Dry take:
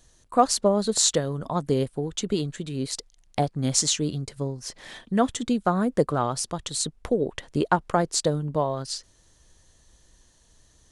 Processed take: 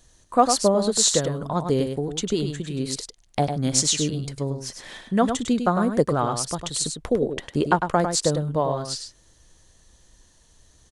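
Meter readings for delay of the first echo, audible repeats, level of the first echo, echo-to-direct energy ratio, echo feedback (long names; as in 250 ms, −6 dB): 102 ms, 1, −7.0 dB, −7.0 dB, repeats not evenly spaced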